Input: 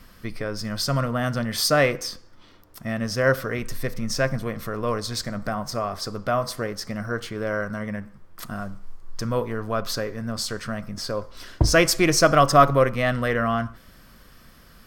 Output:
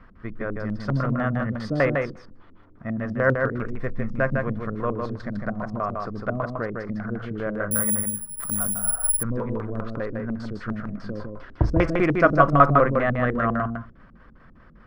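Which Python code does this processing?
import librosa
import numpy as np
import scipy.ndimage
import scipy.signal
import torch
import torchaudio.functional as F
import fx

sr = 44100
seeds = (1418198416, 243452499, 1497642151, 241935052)

p1 = fx.filter_lfo_lowpass(x, sr, shape='square', hz=5.0, low_hz=290.0, high_hz=1500.0, q=1.4)
p2 = p1 + fx.echo_single(p1, sr, ms=154, db=-4.0, dry=0)
p3 = fx.resample_bad(p2, sr, factor=4, down='filtered', up='zero_stuff', at=(7.71, 9.23))
p4 = fx.spec_repair(p3, sr, seeds[0], start_s=8.8, length_s=0.27, low_hz=400.0, high_hz=7900.0, source='before')
y = p4 * librosa.db_to_amplitude(-1.5)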